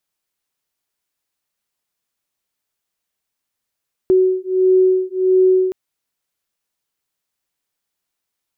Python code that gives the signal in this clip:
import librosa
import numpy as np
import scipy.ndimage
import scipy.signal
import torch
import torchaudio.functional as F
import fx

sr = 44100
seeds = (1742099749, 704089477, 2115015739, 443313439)

y = fx.two_tone_beats(sr, length_s=1.62, hz=372.0, beat_hz=1.5, level_db=-14.5)